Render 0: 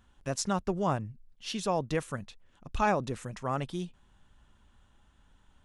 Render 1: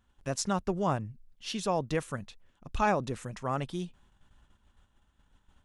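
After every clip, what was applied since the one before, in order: gate -60 dBFS, range -7 dB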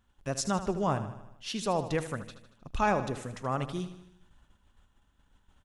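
feedback echo 77 ms, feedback 56%, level -12 dB

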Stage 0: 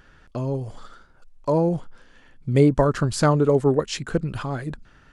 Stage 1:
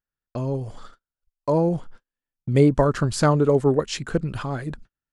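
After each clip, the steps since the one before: gate -40 dBFS, range -41 dB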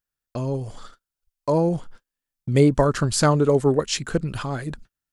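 high shelf 3400 Hz +7.5 dB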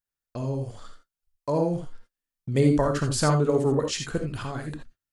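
reverb, pre-delay 3 ms, DRR 4 dB; gain -5.5 dB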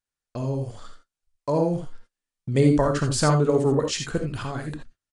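downsampling 22050 Hz; gain +2 dB

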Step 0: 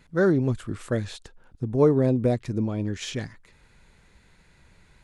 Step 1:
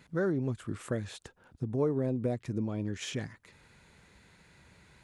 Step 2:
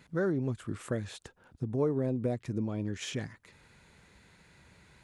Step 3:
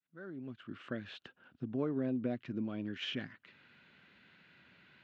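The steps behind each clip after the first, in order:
compressor 2:1, threshold -34 dBFS, peak gain reduction 11 dB; dynamic EQ 4400 Hz, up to -5 dB, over -58 dBFS, Q 1.6; HPF 76 Hz
nothing audible
opening faded in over 1.19 s; speaker cabinet 170–4100 Hz, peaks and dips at 250 Hz +4 dB, 460 Hz -6 dB, 890 Hz -6 dB, 1500 Hz +6 dB, 2900 Hz +9 dB; gain -3.5 dB

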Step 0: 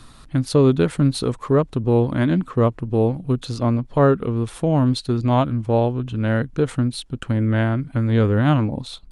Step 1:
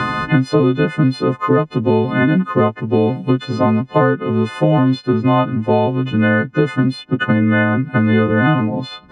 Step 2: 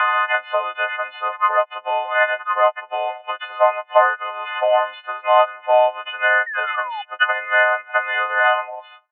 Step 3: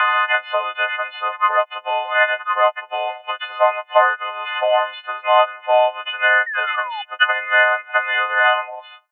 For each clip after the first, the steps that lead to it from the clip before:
frequency quantiser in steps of 3 st; Chebyshev band-pass 160–2000 Hz, order 2; three-band squash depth 100%; gain +5 dB
ending faded out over 0.66 s; painted sound fall, 6.46–7.02, 790–1900 Hz -31 dBFS; Chebyshev band-pass 590–3100 Hz, order 5; gain +4 dB
high shelf 2800 Hz +11 dB; gain -1 dB

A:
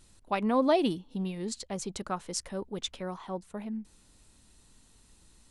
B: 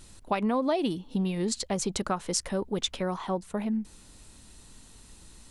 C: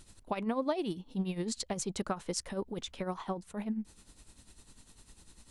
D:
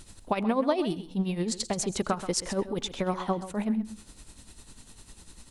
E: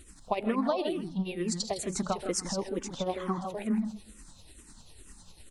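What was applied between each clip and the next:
compressor 5:1, threshold -33 dBFS, peak gain reduction 12 dB; gain +8.5 dB
tremolo 10 Hz, depth 68%; gain -3 dB
vocal rider 2 s; echo 0.13 s -12.5 dB; on a send at -21 dB: reverb RT60 0.35 s, pre-delay 80 ms; on the sum: gain +6 dB
bin magnitudes rounded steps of 15 dB; echo 0.159 s -7 dB; endless phaser -2.2 Hz

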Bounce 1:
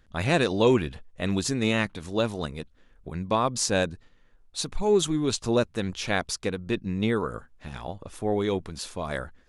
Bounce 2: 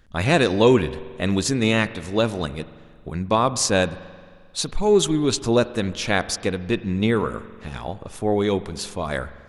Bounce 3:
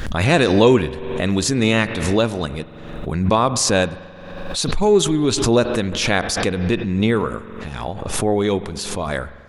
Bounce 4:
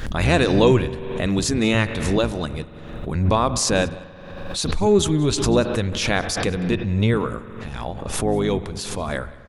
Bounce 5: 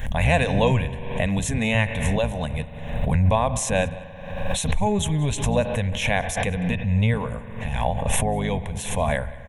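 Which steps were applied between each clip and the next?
spring tank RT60 1.9 s, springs 44 ms, chirp 65 ms, DRR 15 dB; gain +5 dB
backwards sustainer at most 42 dB/s; gain +2 dB
octaver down 1 oct, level -3 dB; echo 0.189 s -23 dB; gain -3 dB
recorder AGC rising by 11 dB/s; fixed phaser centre 1300 Hz, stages 6; gain +1 dB

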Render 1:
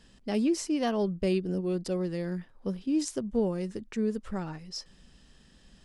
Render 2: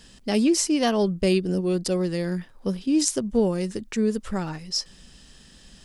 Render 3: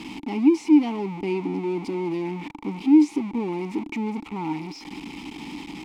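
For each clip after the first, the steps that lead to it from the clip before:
high shelf 3300 Hz +8.5 dB; gain +6 dB
zero-crossing step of -18 dBFS; vowel filter u; gain +5 dB

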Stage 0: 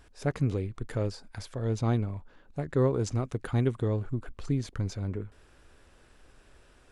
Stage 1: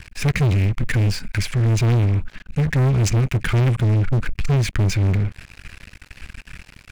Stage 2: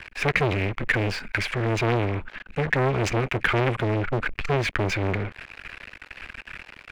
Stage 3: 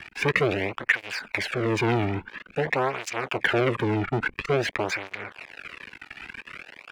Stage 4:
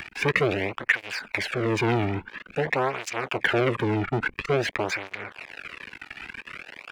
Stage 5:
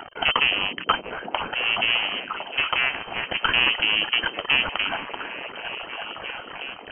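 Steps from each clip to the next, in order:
EQ curve 190 Hz 0 dB, 360 Hz -19 dB, 720 Hz -22 dB, 2400 Hz +7 dB, 3600 Hz -7 dB; sample leveller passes 5; gain +4.5 dB
three-band isolator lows -16 dB, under 330 Hz, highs -16 dB, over 3400 Hz; gain +5 dB
tape flanging out of phase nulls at 0.49 Hz, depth 2 ms; gain +2.5 dB
upward compressor, threshold -34 dBFS
added harmonics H 6 -13 dB, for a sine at -7.5 dBFS; inverted band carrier 3100 Hz; delay with a stepping band-pass 0.352 s, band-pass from 250 Hz, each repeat 0.7 oct, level 0 dB

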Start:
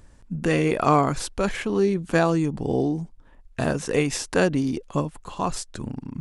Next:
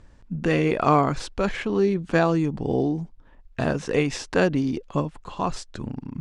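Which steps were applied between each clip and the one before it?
LPF 5200 Hz 12 dB/oct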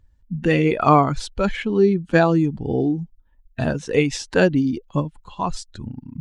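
per-bin expansion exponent 1.5; gain +6 dB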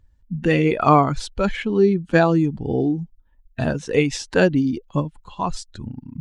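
nothing audible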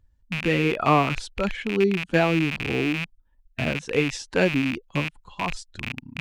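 rattling part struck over -33 dBFS, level -12 dBFS; gain -5 dB

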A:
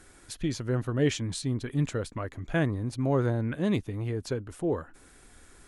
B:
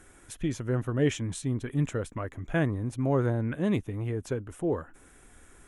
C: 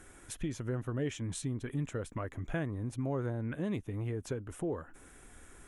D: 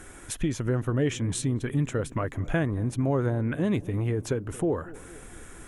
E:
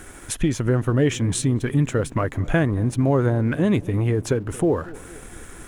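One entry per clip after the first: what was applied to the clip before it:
bell 4500 Hz -12.5 dB 0.47 oct
compressor 2.5:1, threshold -35 dBFS, peak gain reduction 10.5 dB
darkening echo 0.229 s, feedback 67%, low-pass 880 Hz, level -19 dB; gain +9 dB
crossover distortion -57.5 dBFS; gain +6.5 dB

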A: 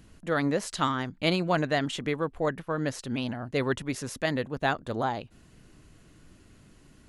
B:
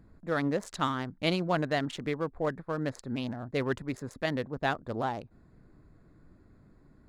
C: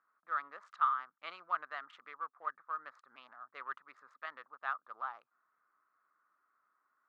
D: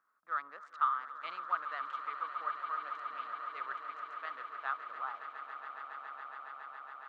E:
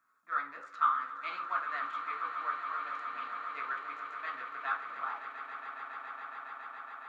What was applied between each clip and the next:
Wiener smoothing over 15 samples; gain -2.5 dB
ladder band-pass 1300 Hz, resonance 80%; gain +1 dB
swelling echo 0.139 s, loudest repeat 8, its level -13.5 dB
reverb RT60 0.40 s, pre-delay 3 ms, DRR -1 dB; gain +2.5 dB

